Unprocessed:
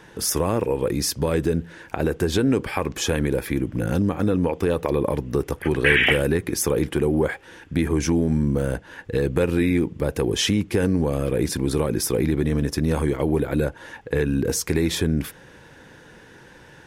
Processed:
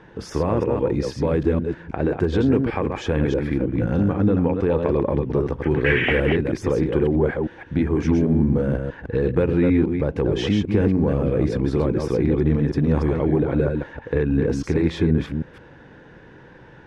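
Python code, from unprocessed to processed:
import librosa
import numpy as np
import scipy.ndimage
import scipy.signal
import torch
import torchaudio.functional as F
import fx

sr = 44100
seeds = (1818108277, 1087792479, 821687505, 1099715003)

p1 = fx.reverse_delay(x, sr, ms=159, wet_db=-4.5)
p2 = 10.0 ** (-16.0 / 20.0) * np.tanh(p1 / 10.0 ** (-16.0 / 20.0))
p3 = p1 + (p2 * librosa.db_to_amplitude(-10.0))
y = fx.spacing_loss(p3, sr, db_at_10k=30)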